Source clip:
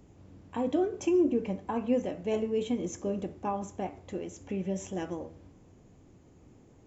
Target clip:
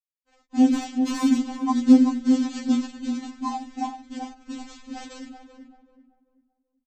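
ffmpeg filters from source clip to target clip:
-filter_complex "[0:a]aemphasis=mode=reproduction:type=bsi,bandreject=f=50:t=h:w=6,bandreject=f=100:t=h:w=6,bandreject=f=150:t=h:w=6,bandreject=f=200:t=h:w=6,bandreject=f=250:t=h:w=6,bandreject=f=300:t=h:w=6,bandreject=f=350:t=h:w=6,bandreject=f=400:t=h:w=6,bandreject=f=450:t=h:w=6,bandreject=f=500:t=h:w=6,agate=range=-33dB:threshold=-38dB:ratio=3:detection=peak,afftfilt=real='re*gte(hypot(re,im),0.0447)':imag='im*gte(hypot(re,im),0.0447)':win_size=1024:overlap=0.75,bass=f=250:g=5,treble=f=4k:g=-5,bandreject=f=380:w=12,aecho=1:1:2.9:0.89,acontrast=35,aresample=16000,acrusher=bits=4:mode=log:mix=0:aa=0.000001,aresample=44100,asoftclip=type=hard:threshold=-8.5dB,asplit=2[a][b];[b]adelay=386,lowpass=f=1.1k:p=1,volume=-6dB,asplit=2[c][d];[d]adelay=386,lowpass=f=1.1k:p=1,volume=0.35,asplit=2[e][f];[f]adelay=386,lowpass=f=1.1k:p=1,volume=0.35,asplit=2[g][h];[h]adelay=386,lowpass=f=1.1k:p=1,volume=0.35[i];[a][c][e][g][i]amix=inputs=5:normalize=0,afftfilt=real='re*3.46*eq(mod(b,12),0)':imag='im*3.46*eq(mod(b,12),0)':win_size=2048:overlap=0.75"

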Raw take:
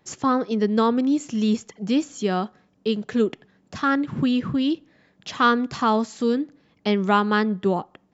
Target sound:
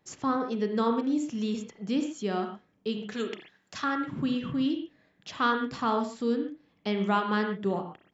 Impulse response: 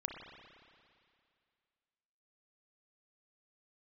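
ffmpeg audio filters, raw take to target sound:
-filter_complex "[0:a]asettb=1/sr,asplit=3[a][b][c];[a]atrim=end=3.124[d];[b]atrim=start=3.12:end=3.84,asetpts=PTS-STARTPTS,afade=t=in:d=0.004:c=qsin,afade=t=out:st=0.716:d=0.004:c=qsin,tiltshelf=f=780:g=-8.5[e];[c]atrim=start=3.836[f];[d][e]acrossfade=d=0.004:c1=hsin:c2=qsin[g];[g][f]acrossfade=d=0.004:c1=qsin:c2=hsin,asettb=1/sr,asplit=3[h][i][j];[h]atrim=end=5.334[k];[i]atrim=start=5.33:end=6.27,asetpts=PTS-STARTPTS,afade=t=in:d=0.004:c=qsin,afade=t=out:st=0.936:d=0.004:c=qsin,bandreject=f=6.4k:w=10[l];[j]atrim=start=6.266[m];[k][l]acrossfade=d=0.004:c1=hsin:c2=qsin[n];[n][m]acrossfade=d=0.004:c1=qsin:c2=hsin[o];[1:a]atrim=start_sample=2205,atrim=end_sample=6615[p];[o][p]afir=irnorm=-1:irlink=0,volume=-6dB"

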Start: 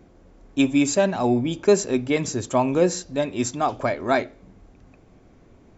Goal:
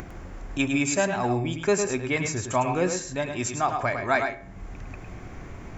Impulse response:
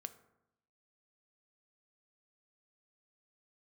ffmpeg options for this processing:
-filter_complex "[0:a]acompressor=mode=upward:threshold=-23dB:ratio=2.5,equalizer=f=250:t=o:w=1:g=-7,equalizer=f=500:t=o:w=1:g=-6,equalizer=f=2k:t=o:w=1:g=4,equalizer=f=4k:t=o:w=1:g=-6,asplit=2[a][b];[1:a]atrim=start_sample=2205,asetrate=70560,aresample=44100,adelay=105[c];[b][c]afir=irnorm=-1:irlink=0,volume=2dB[d];[a][d]amix=inputs=2:normalize=0"

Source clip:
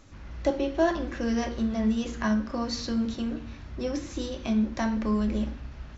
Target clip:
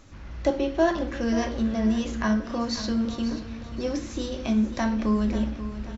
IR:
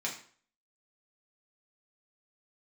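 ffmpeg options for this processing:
-af "aecho=1:1:536|1072|1608|2144:0.237|0.104|0.0459|0.0202,volume=2dB"

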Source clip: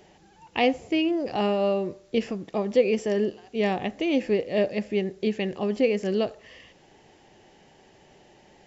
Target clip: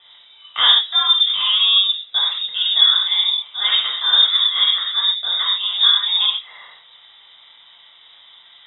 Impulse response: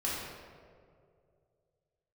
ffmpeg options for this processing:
-filter_complex "[1:a]atrim=start_sample=2205,atrim=end_sample=6174[a];[0:a][a]afir=irnorm=-1:irlink=0,lowpass=f=3.3k:t=q:w=0.5098,lowpass=f=3.3k:t=q:w=0.6013,lowpass=f=3.3k:t=q:w=0.9,lowpass=f=3.3k:t=q:w=2.563,afreqshift=-3900,volume=3.5dB"

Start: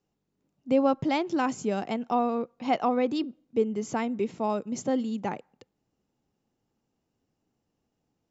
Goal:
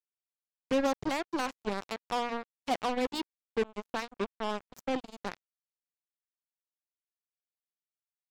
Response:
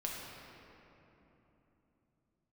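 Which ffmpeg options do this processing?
-filter_complex "[0:a]equalizer=f=4.6k:w=0.68:g=5,bandreject=f=60:t=h:w=6,bandreject=f=120:t=h:w=6,bandreject=f=180:t=h:w=6,bandreject=f=240:t=h:w=6,acrossover=split=1300[a][b];[b]alimiter=level_in=0.5dB:limit=-24dB:level=0:latency=1:release=236,volume=-0.5dB[c];[a][c]amix=inputs=2:normalize=0,acrusher=bits=3:mix=0:aa=0.5,volume=-5.5dB"

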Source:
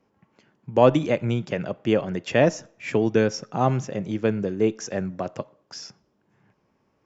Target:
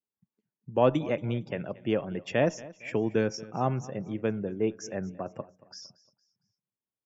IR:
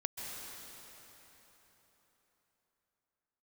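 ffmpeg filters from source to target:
-af "afftdn=nr=28:nf=-44,aecho=1:1:229|458|687:0.1|0.039|0.0152,volume=-6.5dB"

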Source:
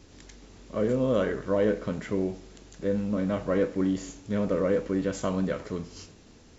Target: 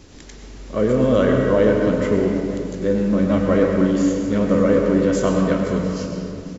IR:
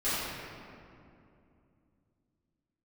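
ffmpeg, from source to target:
-filter_complex "[0:a]aecho=1:1:503:0.15,asplit=2[a][b];[1:a]atrim=start_sample=2205,adelay=93[c];[b][c]afir=irnorm=-1:irlink=0,volume=-12.5dB[d];[a][d]amix=inputs=2:normalize=0,volume=7.5dB"

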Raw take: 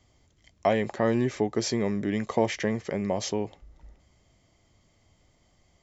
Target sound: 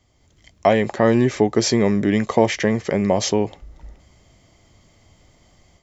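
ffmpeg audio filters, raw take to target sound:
-af "dynaudnorm=f=180:g=3:m=9dB,volume=1dB"

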